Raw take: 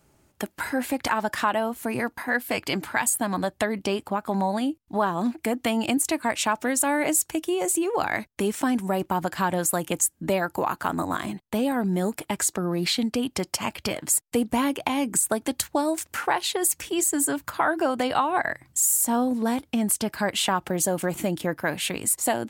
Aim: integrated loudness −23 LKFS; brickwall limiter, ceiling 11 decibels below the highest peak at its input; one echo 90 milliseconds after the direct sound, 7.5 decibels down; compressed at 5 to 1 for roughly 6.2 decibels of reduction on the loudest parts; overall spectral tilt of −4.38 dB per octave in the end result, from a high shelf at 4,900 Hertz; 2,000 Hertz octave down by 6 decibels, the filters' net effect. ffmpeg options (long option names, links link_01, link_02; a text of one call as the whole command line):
ffmpeg -i in.wav -af "equalizer=frequency=2000:width_type=o:gain=-7.5,highshelf=frequency=4900:gain=-3.5,acompressor=threshold=-27dB:ratio=5,alimiter=level_in=1.5dB:limit=-24dB:level=0:latency=1,volume=-1.5dB,aecho=1:1:90:0.422,volume=11dB" out.wav